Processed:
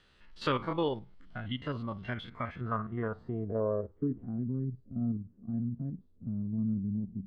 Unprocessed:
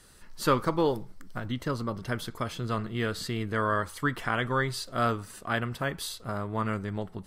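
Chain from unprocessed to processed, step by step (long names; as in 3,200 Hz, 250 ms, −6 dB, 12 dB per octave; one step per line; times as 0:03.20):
spectrum averaged block by block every 50 ms
in parallel at +1.5 dB: downward compressor, threshold −40 dBFS, peak gain reduction 18 dB
on the sum: low-pass filter sweep 3,100 Hz → 230 Hz, 0:02.11–0:04.45
noise reduction from a noise print of the clip's start 8 dB
level −6 dB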